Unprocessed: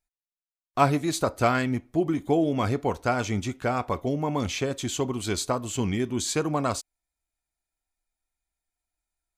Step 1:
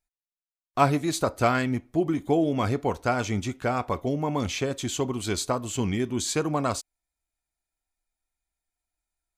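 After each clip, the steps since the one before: nothing audible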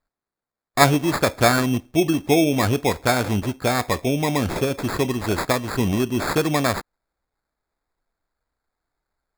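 sample-and-hold 15×; gain +5.5 dB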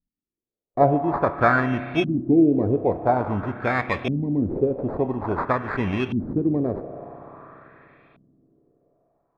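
spring tank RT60 4 s, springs 31/48 ms, chirp 75 ms, DRR 11.5 dB; LFO low-pass saw up 0.49 Hz 200–3000 Hz; gain -4 dB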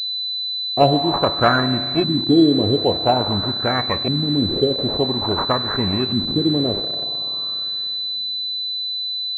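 in parallel at -8 dB: bit-crush 5-bit; on the sum: pulse-width modulation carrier 4000 Hz

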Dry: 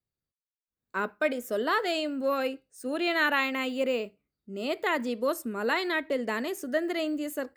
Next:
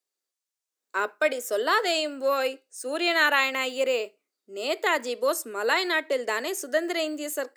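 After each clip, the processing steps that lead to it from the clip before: HPF 350 Hz 24 dB/oct; bell 6900 Hz +8 dB 1.3 oct; gain +3.5 dB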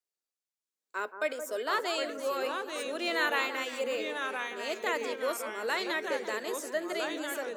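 echoes that change speed 0.612 s, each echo -2 st, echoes 2, each echo -6 dB; echo with dull and thin repeats by turns 0.173 s, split 1400 Hz, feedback 55%, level -9 dB; gain -8 dB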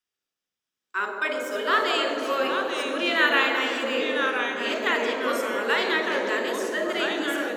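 reverb RT60 3.5 s, pre-delay 33 ms, DRR 3 dB

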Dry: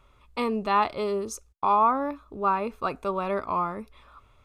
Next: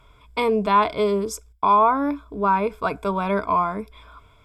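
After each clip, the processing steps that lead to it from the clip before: ripple EQ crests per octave 1.7, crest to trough 11 dB; in parallel at -2.5 dB: limiter -17.5 dBFS, peak gain reduction 7.5 dB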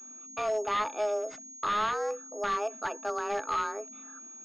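frequency shift +210 Hz; wavefolder -14.5 dBFS; pulse-width modulation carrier 6600 Hz; gain -8.5 dB

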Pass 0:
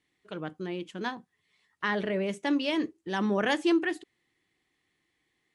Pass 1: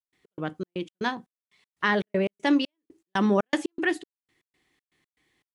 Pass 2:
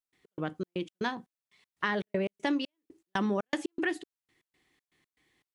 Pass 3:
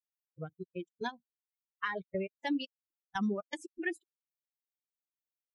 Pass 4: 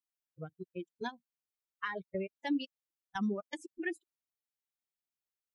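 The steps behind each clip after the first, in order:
step gate ".x.xx.x.xx." 119 bpm -60 dB; gain +5.5 dB
compressor 3:1, threshold -27 dBFS, peak gain reduction 7.5 dB; gain -1 dB
per-bin expansion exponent 3
dynamic EQ 280 Hz, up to +3 dB, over -45 dBFS, Q 1.7; gain -2.5 dB

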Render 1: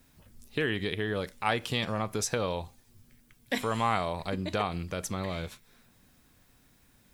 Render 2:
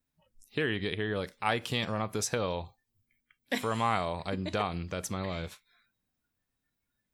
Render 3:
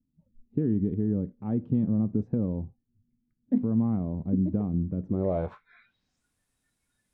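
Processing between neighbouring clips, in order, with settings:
spectral noise reduction 21 dB; gain -1 dB
low-pass sweep 240 Hz -> 9600 Hz, 5.03–6.27; gain +5.5 dB

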